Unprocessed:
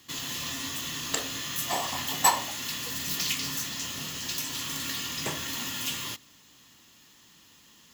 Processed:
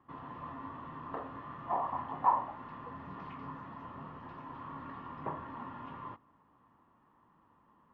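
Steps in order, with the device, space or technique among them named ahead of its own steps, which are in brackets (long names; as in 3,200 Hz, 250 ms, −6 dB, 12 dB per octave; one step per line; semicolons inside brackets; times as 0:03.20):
overdriven synthesiser ladder filter (soft clipping −19.5 dBFS, distortion −13 dB; transistor ladder low-pass 1,200 Hz, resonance 55%)
level +4 dB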